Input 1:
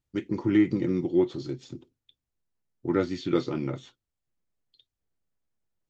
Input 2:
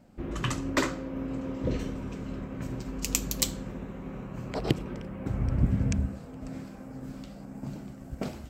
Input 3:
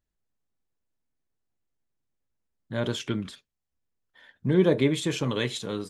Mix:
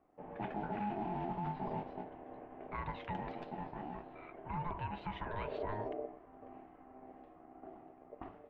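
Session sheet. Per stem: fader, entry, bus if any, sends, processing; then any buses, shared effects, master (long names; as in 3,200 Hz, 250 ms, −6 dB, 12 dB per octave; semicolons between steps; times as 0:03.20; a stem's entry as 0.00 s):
+2.0 dB, 0.25 s, no send, brickwall limiter −22 dBFS, peak gain reduction 11 dB; noise that follows the level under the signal 10 dB; chorus effect 0.52 Hz, delay 17.5 ms, depth 6.2 ms; automatic ducking −9 dB, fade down 0.85 s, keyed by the third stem
−11.5 dB, 0.00 s, no send, no processing
+3.0 dB, 0.00 s, no send, downward compressor 5 to 1, threshold −31 dBFS, peak gain reduction 14.5 dB; Chebyshev high-pass with heavy ripple 320 Hz, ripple 3 dB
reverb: not used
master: low-pass filter 2,100 Hz 24 dB per octave; ring modulation 520 Hz; brickwall limiter −29.5 dBFS, peak gain reduction 10 dB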